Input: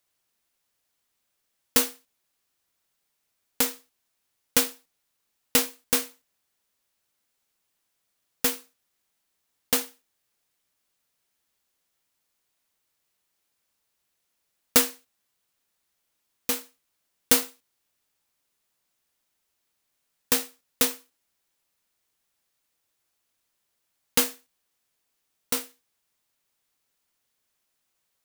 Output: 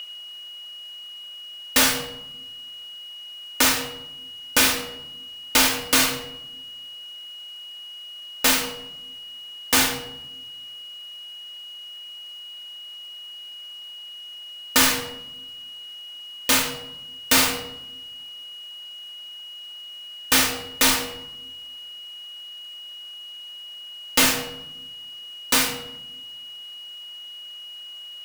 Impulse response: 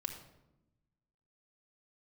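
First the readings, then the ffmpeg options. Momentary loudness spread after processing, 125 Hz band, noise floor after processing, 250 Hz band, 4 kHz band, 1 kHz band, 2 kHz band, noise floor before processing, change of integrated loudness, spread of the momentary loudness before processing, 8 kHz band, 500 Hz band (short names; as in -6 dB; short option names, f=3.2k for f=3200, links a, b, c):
18 LU, +9.5 dB, -39 dBFS, +6.0 dB, +11.0 dB, +10.5 dB, +11.5 dB, -77 dBFS, +4.5 dB, 11 LU, +6.0 dB, +3.5 dB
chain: -filter_complex "[0:a]aeval=exprs='val(0)+0.00224*sin(2*PI*2900*n/s)':c=same,asplit=2[a][b];[b]highpass=f=720:p=1,volume=33dB,asoftclip=type=tanh:threshold=-3dB[c];[a][c]amix=inputs=2:normalize=0,lowpass=f=4.3k:p=1,volume=-6dB[d];[1:a]atrim=start_sample=2205[e];[d][e]afir=irnorm=-1:irlink=0"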